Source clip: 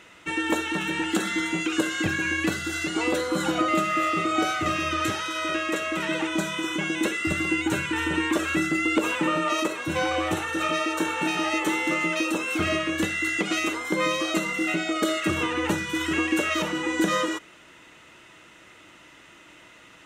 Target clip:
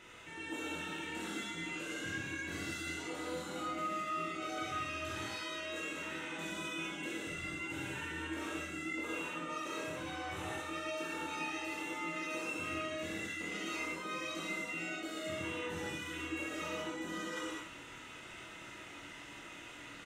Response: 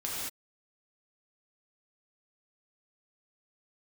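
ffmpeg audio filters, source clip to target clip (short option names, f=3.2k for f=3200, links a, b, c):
-filter_complex "[0:a]lowshelf=f=64:g=7,bandreject=f=1.1k:w=25,areverse,acompressor=threshold=-37dB:ratio=12,areverse,aecho=1:1:24|67:0.501|0.447[a];[1:a]atrim=start_sample=2205[b];[a][b]afir=irnorm=-1:irlink=0,volume=-6dB"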